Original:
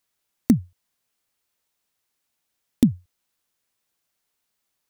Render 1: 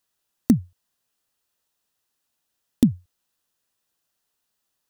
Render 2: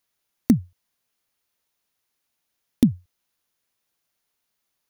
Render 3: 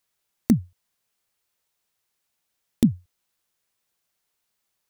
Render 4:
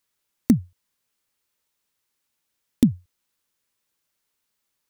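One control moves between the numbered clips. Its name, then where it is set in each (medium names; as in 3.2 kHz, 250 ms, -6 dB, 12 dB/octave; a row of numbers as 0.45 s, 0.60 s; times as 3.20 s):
band-stop, frequency: 2.2 kHz, 7.9 kHz, 270 Hz, 710 Hz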